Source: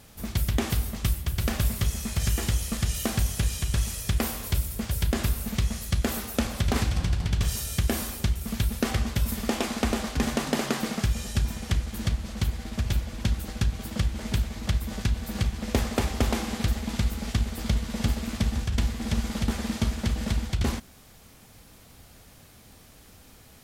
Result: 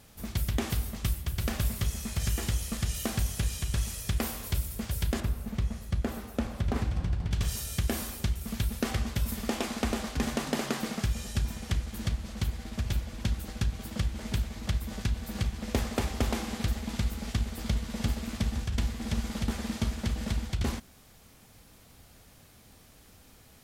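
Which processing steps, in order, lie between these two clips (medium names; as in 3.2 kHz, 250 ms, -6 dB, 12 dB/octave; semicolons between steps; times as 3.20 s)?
5.20–7.31 s: treble shelf 2.2 kHz -12 dB; trim -4 dB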